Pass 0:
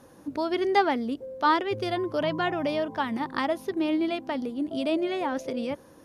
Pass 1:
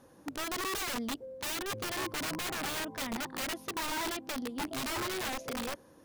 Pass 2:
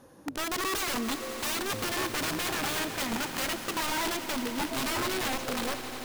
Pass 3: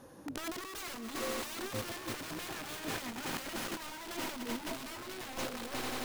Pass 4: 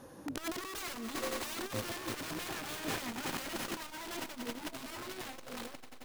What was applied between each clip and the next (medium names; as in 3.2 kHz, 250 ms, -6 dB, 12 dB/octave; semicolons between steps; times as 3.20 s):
integer overflow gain 24.5 dB; trim -6 dB
echo with a slow build-up 89 ms, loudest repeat 5, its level -15.5 dB; trim +4 dB
compressor with a negative ratio -35 dBFS, ratio -0.5; trim -4 dB
transformer saturation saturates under 250 Hz; trim +2 dB